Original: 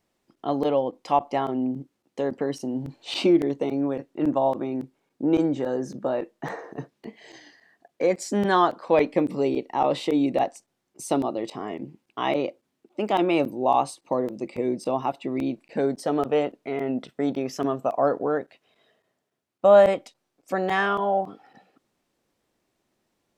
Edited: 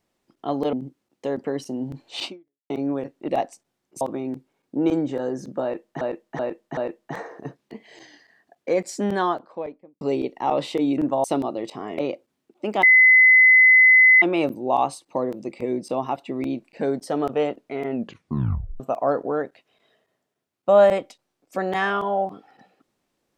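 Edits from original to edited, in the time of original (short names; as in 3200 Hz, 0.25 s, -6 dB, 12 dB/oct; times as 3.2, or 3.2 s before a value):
0.73–1.67 cut
3.18–3.64 fade out exponential
4.22–4.48 swap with 10.31–11.04
6.1–6.48 loop, 4 plays
8.21–9.34 studio fade out
11.78–12.33 cut
13.18 add tone 2030 Hz -9.5 dBFS 1.39 s
16.9 tape stop 0.86 s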